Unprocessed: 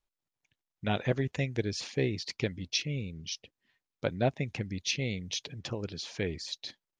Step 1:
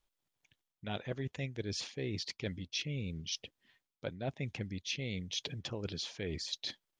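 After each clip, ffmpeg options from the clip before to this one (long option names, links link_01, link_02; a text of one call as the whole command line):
ffmpeg -i in.wav -af "equalizer=frequency=3300:width_type=o:width=0.24:gain=4.5,areverse,acompressor=threshold=-39dB:ratio=6,areverse,volume=3.5dB" out.wav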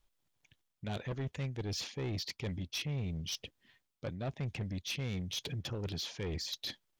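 ffmpeg -i in.wav -af "lowshelf=frequency=160:gain=6.5,asoftclip=type=tanh:threshold=-34.5dB,volume=2.5dB" out.wav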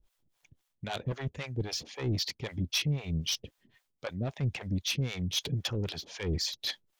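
ffmpeg -i in.wav -filter_complex "[0:a]acrossover=split=510[link_01][link_02];[link_01]aeval=exprs='val(0)*(1-1/2+1/2*cos(2*PI*3.8*n/s))':channel_layout=same[link_03];[link_02]aeval=exprs='val(0)*(1-1/2-1/2*cos(2*PI*3.8*n/s))':channel_layout=same[link_04];[link_03][link_04]amix=inputs=2:normalize=0,volume=9dB" out.wav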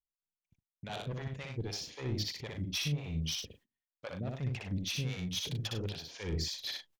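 ffmpeg -i in.wav -af "aecho=1:1:61.22|99.13:0.708|0.316,agate=range=-27dB:threshold=-55dB:ratio=16:detection=peak,volume=-6dB" out.wav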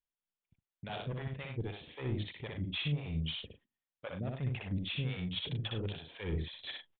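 ffmpeg -i in.wav -af "aresample=8000,aresample=44100" out.wav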